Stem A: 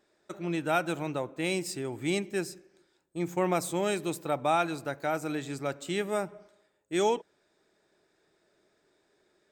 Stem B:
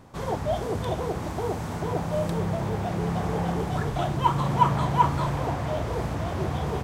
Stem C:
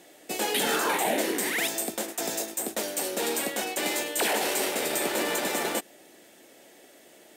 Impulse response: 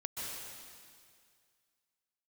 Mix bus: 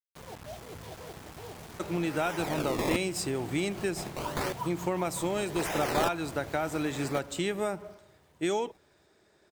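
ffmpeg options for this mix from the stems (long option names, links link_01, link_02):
-filter_complex "[0:a]acontrast=66,adelay=1500,volume=-1.5dB[link_01];[1:a]acrusher=bits=4:mix=0:aa=0.000001,volume=-17dB,asplit=2[link_02][link_03];[link_03]volume=-10dB[link_04];[2:a]acrusher=samples=20:mix=1:aa=0.000001:lfo=1:lforange=20:lforate=0.86,aeval=exprs='val(0)*pow(10,-35*if(lt(mod(-0.64*n/s,1),2*abs(-0.64)/1000),1-mod(-0.64*n/s,1)/(2*abs(-0.64)/1000),(mod(-0.64*n/s,1)-2*abs(-0.64)/1000)/(1-2*abs(-0.64)/1000))/20)':channel_layout=same,adelay=1400,volume=0.5dB[link_05];[link_01][link_02]amix=inputs=2:normalize=0,acompressor=threshold=-27dB:ratio=5,volume=0dB[link_06];[link_04]aecho=0:1:559|1118|1677|2236|2795|3354|3913:1|0.5|0.25|0.125|0.0625|0.0312|0.0156[link_07];[link_05][link_06][link_07]amix=inputs=3:normalize=0"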